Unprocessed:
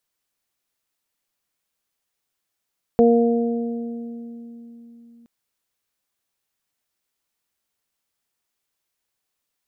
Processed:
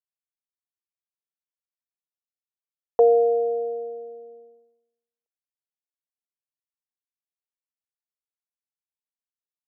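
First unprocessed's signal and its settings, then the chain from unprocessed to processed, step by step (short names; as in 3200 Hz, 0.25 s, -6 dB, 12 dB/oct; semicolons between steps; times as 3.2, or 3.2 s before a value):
additive tone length 2.27 s, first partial 234 Hz, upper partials 3/-6.5 dB, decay 4.15 s, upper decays 2.31/2.07 s, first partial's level -14.5 dB
elliptic band-pass 430–1000 Hz, stop band 60 dB; expander -50 dBFS; in parallel at -3 dB: compressor, threshold -28 dBFS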